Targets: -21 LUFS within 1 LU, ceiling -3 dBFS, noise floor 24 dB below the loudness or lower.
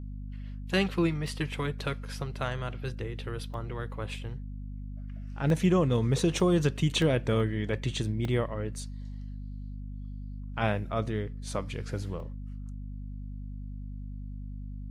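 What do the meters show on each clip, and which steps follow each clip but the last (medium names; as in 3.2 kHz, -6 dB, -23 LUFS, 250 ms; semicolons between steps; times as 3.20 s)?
dropouts 7; longest dropout 1.3 ms; hum 50 Hz; highest harmonic 250 Hz; hum level -36 dBFS; loudness -30.5 LUFS; peak level -13.0 dBFS; loudness target -21.0 LUFS
-> interpolate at 1.27/3.54/5.50/6.40/7.02/8.25/12.20 s, 1.3 ms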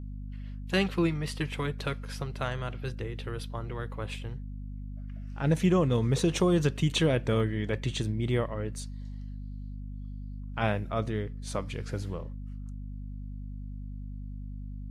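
dropouts 0; hum 50 Hz; highest harmonic 250 Hz; hum level -36 dBFS
-> de-hum 50 Hz, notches 5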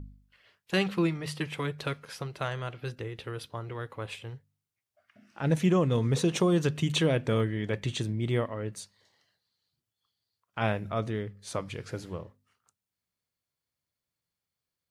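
hum not found; loudness -30.5 LUFS; peak level -13.5 dBFS; loudness target -21.0 LUFS
-> trim +9.5 dB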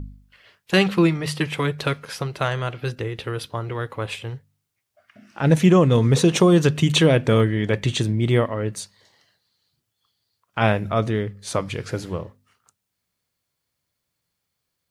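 loudness -21.0 LUFS; peak level -4.0 dBFS; noise floor -79 dBFS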